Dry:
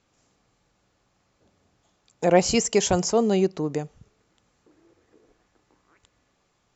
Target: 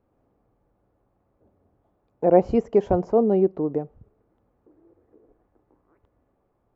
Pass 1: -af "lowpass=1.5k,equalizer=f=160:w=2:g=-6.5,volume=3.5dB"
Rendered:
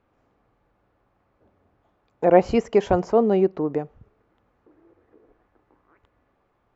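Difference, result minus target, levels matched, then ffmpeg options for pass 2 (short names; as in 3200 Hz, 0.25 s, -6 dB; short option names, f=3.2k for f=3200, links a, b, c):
2000 Hz band +10.5 dB
-af "lowpass=720,equalizer=f=160:w=2:g=-6.5,volume=3.5dB"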